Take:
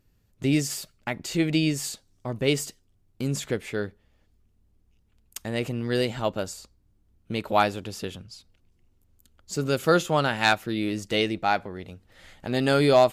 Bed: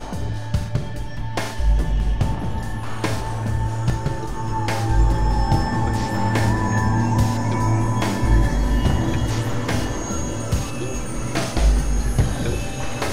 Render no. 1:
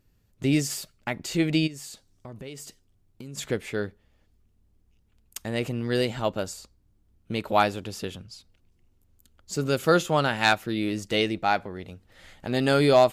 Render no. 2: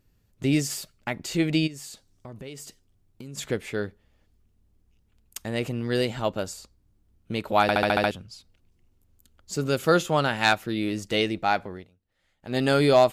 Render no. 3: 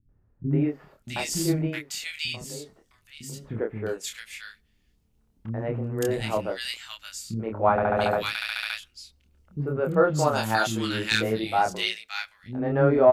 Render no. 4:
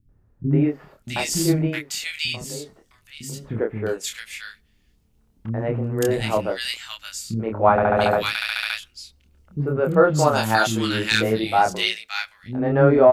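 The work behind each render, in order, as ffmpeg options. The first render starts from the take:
-filter_complex "[0:a]asplit=3[a][b][c];[a]afade=t=out:st=1.66:d=0.02[d];[b]acompressor=threshold=-38dB:ratio=5:attack=3.2:release=140:knee=1:detection=peak,afade=t=in:st=1.66:d=0.02,afade=t=out:st=3.37:d=0.02[e];[c]afade=t=in:st=3.37:d=0.02[f];[d][e][f]amix=inputs=3:normalize=0"
-filter_complex "[0:a]asplit=10[a][b][c][d][e][f][g][h][i][j];[a]atrim=end=7.692[k];[b]atrim=start=7.618:end=7.692[l];[c]atrim=start=7.618:end=7.692[m];[d]atrim=start=7.618:end=7.692[n];[e]atrim=start=7.618:end=7.692[o];[f]atrim=start=7.618:end=7.692[p];[g]atrim=start=7.618:end=7.692[q];[h]atrim=start=8.108:end=11.89,asetpts=PTS-STARTPTS,afade=t=out:st=3.622:d=0.16:silence=0.0891251[r];[i]atrim=start=11.89:end=12.41,asetpts=PTS-STARTPTS,volume=-21dB[s];[j]atrim=start=12.41,asetpts=PTS-STARTPTS,afade=t=in:d=0.16:silence=0.0891251[t];[k][l]acrossfade=d=0.004:c1=hsin:c2=hsin[u];[u][m]acrossfade=d=0.004:c1=hsin:c2=hsin[v];[v][n]acrossfade=d=0.004:c1=hsin:c2=hsin[w];[w][o]acrossfade=d=0.004:c1=hsin:c2=hsin[x];[x][p]acrossfade=d=0.004:c1=hsin:c2=hsin[y];[y][q]acrossfade=d=0.004:c1=hsin:c2=hsin[z];[r][s][t]concat=n=3:v=0:a=1[aa];[z][aa]acrossfade=d=0.004:c1=hsin:c2=hsin"
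-filter_complex "[0:a]asplit=2[a][b];[b]adelay=27,volume=-3.5dB[c];[a][c]amix=inputs=2:normalize=0,acrossover=split=270|1600[d][e][f];[e]adelay=90[g];[f]adelay=660[h];[d][g][h]amix=inputs=3:normalize=0"
-af "volume=5dB,alimiter=limit=-3dB:level=0:latency=1"

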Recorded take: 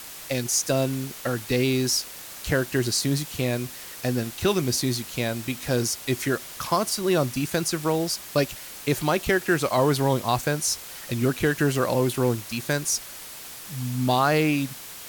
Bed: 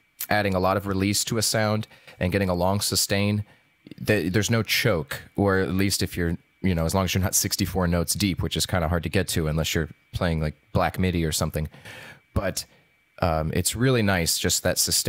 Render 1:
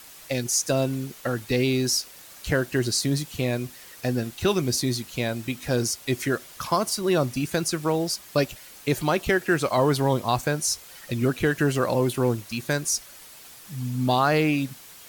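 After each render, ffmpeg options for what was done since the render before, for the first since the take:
-af "afftdn=nr=7:nf=-40"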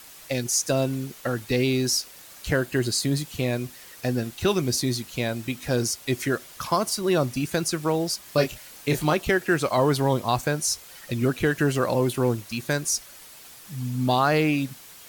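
-filter_complex "[0:a]asettb=1/sr,asplit=3[a][b][c];[a]atrim=end=2.564[d];[b]atrim=start=2.56:end=3.23,asetpts=PTS-STARTPTS,afade=t=in:d=0.004:c=qsin,afade=t=out:st=0.666:d=0.004:c=qsin,bandreject=f=5.7k:w=10[e];[c]atrim=start=3.226[f];[d][e]acrossfade=d=0.004:c1=hsin:c2=qsin[g];[g][f]acrossfade=d=0.004:c1=qsin:c2=hsin,asettb=1/sr,asplit=3[h][i][j];[h]atrim=end=8.234[k];[i]atrim=start=8.23:end=9.14,asetpts=PTS-STARTPTS,afade=t=in:d=0.004:c=qsin,afade=t=out:st=0.906:d=0.004:c=qsin,asplit=2[l][m];[m]adelay=26,volume=-5.5dB[n];[l][n]amix=inputs=2:normalize=0,atrim=end_sample=40131[o];[j]atrim=start=9.136[p];[k][o]acrossfade=d=0.004:c1=hsin:c2=qsin[q];[q][p]acrossfade=d=0.004:c1=qsin:c2=hsin"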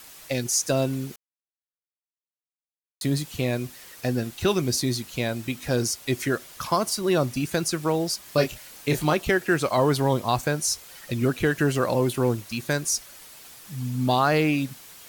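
-filter_complex "[0:a]asplit=3[a][b][c];[a]atrim=end=1.16,asetpts=PTS-STARTPTS,afade=t=out:st=1.156:d=0.004:c=hsin[d];[b]atrim=start=1.16:end=3.01,asetpts=PTS-STARTPTS,volume=0[e];[c]atrim=start=3.01,asetpts=PTS-STARTPTS,afade=t=in:d=0.004:c=hsin[f];[d][e][f]concat=n=3:v=0:a=1"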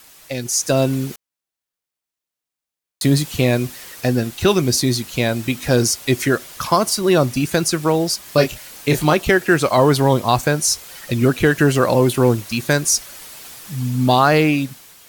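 -af "dynaudnorm=f=180:g=7:m=10dB"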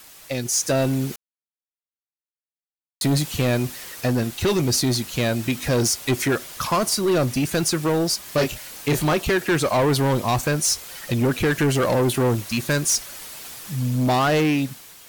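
-af "asoftclip=type=tanh:threshold=-15dB,acrusher=bits=8:mix=0:aa=0.000001"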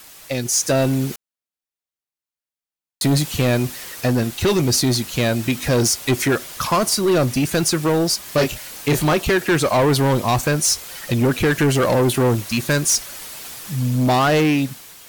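-af "volume=3dB"

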